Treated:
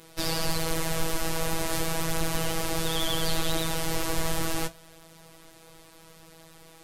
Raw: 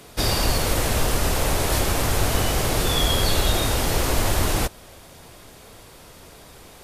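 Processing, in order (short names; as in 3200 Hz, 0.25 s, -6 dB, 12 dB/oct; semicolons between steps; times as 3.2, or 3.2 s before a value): vibrato 12 Hz 98 cents; robotiser 163 Hz; flange 0.35 Hz, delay 8 ms, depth 8.9 ms, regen -56%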